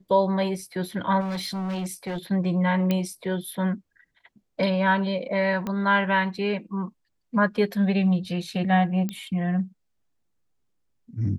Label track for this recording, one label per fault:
1.200000	2.180000	clipped -26.5 dBFS
2.910000	2.910000	pop -12 dBFS
5.670000	5.670000	pop -17 dBFS
9.090000	9.090000	pop -17 dBFS

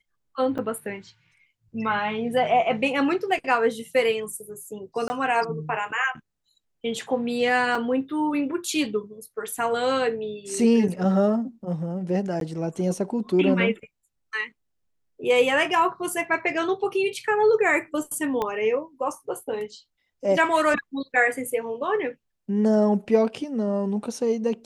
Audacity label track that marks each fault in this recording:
0.580000	0.590000	gap 6.7 ms
5.080000	5.100000	gap 20 ms
7.750000	7.750000	gap 3.8 ms
12.400000	12.410000	gap 12 ms
18.420000	18.420000	pop -14 dBFS

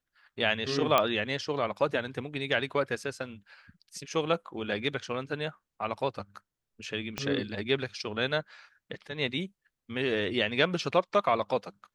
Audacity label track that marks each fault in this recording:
0.980000	0.980000	pop -9 dBFS
7.180000	7.180000	pop -16 dBFS

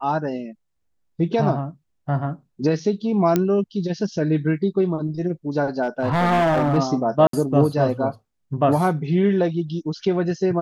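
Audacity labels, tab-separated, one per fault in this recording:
3.360000	3.360000	pop -6 dBFS
5.820000	6.780000	clipped -15.5 dBFS
7.270000	7.330000	gap 63 ms

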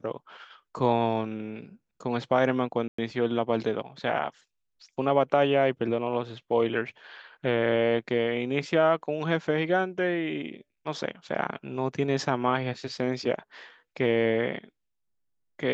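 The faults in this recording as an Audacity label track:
2.880000	2.980000	gap 0.104 s

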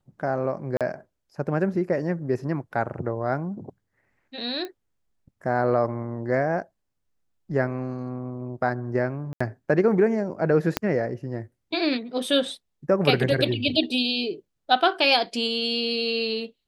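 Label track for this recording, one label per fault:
0.770000	0.810000	gap 37 ms
4.650000	4.650000	pop -21 dBFS
9.330000	9.400000	gap 75 ms
10.770000	10.770000	pop -6 dBFS

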